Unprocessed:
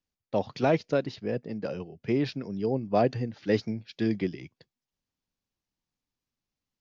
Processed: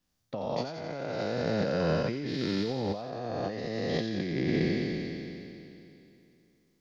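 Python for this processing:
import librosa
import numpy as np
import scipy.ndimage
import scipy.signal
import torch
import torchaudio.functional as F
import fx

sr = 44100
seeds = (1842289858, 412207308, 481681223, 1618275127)

p1 = fx.spec_trails(x, sr, decay_s=2.82)
p2 = fx.graphic_eq_31(p1, sr, hz=(160, 400, 2500), db=(4, -4, -4))
p3 = fx.over_compress(p2, sr, threshold_db=-32.0, ratio=-1.0)
y = p3 + fx.echo_wet_highpass(p3, sr, ms=88, feedback_pct=64, hz=3600.0, wet_db=-3.5, dry=0)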